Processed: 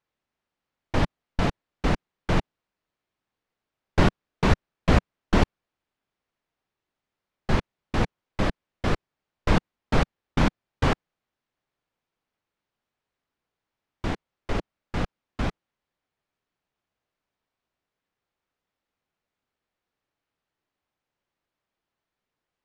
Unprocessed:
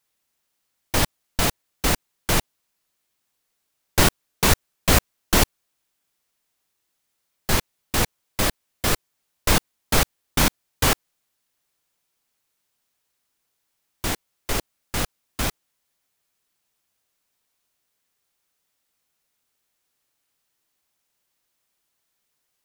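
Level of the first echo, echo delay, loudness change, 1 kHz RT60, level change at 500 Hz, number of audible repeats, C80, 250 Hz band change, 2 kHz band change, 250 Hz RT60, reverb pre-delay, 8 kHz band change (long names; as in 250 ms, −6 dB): no echo audible, no echo audible, −4.5 dB, no reverb audible, −1.0 dB, no echo audible, no reverb audible, +1.0 dB, −5.5 dB, no reverb audible, no reverb audible, −21.0 dB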